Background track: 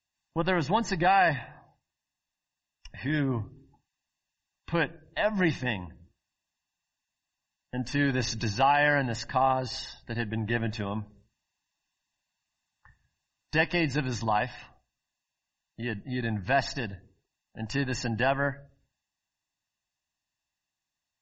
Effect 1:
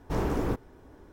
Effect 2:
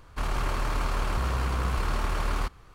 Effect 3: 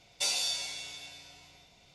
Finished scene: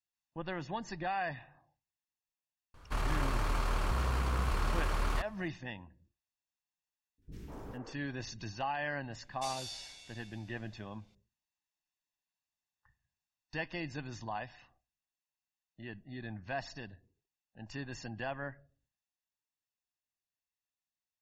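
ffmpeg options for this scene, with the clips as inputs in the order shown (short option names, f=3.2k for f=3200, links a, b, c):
-filter_complex "[0:a]volume=-13dB[a];[1:a]acrossover=split=330|1900[b][c][d];[d]adelay=40[e];[c]adelay=200[f];[b][f][e]amix=inputs=3:normalize=0[g];[2:a]atrim=end=2.74,asetpts=PTS-STARTPTS,volume=-4.5dB,afade=t=in:d=0.004:c=hsin,afade=t=out:st=2.736:d=0.004:c=hsin,adelay=2740[h];[g]atrim=end=1.12,asetpts=PTS-STARTPTS,volume=-16.5dB,afade=t=in:d=0.004:c=hsin,afade=t=out:st=1.116:d=0.004:c=hsin,adelay=7180[i];[3:a]atrim=end=1.94,asetpts=PTS-STARTPTS,volume=-13dB,afade=t=in:d=0.004:c=hsin,afade=t=out:st=1.936:d=0.004:c=hsin,adelay=9210[j];[a][h][i][j]amix=inputs=4:normalize=0"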